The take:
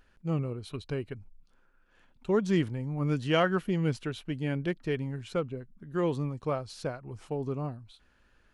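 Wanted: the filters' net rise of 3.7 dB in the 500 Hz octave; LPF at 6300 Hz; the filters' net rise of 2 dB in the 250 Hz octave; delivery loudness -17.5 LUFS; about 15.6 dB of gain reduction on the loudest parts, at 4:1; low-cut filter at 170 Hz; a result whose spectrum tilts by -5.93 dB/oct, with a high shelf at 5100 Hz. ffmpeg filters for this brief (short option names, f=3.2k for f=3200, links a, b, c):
-af "highpass=170,lowpass=6.3k,equalizer=f=250:t=o:g=3.5,equalizer=f=500:t=o:g=3.5,highshelf=f=5.1k:g=4,acompressor=threshold=-37dB:ratio=4,volume=23.5dB"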